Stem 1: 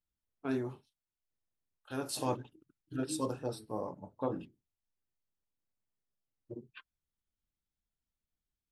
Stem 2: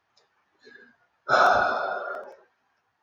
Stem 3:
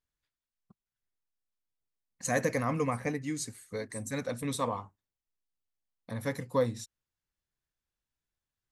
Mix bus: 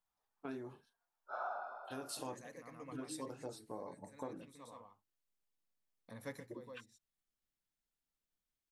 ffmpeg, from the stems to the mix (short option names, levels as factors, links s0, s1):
-filter_complex "[0:a]acompressor=threshold=0.00794:ratio=3,volume=0.891,asplit=2[s0][s1];[1:a]bandpass=f=880:t=q:w=1.9:csg=0,volume=0.112,asplit=2[s2][s3];[s3]volume=0.188[s4];[2:a]volume=0.266,asplit=2[s5][s6];[s6]volume=0.211[s7];[s1]apad=whole_len=384465[s8];[s5][s8]sidechaincompress=threshold=0.00112:ratio=8:attack=10:release=636[s9];[s4][s7]amix=inputs=2:normalize=0,aecho=0:1:126:1[s10];[s0][s2][s9][s10]amix=inputs=4:normalize=0,equalizer=f=61:t=o:w=2.2:g=-10"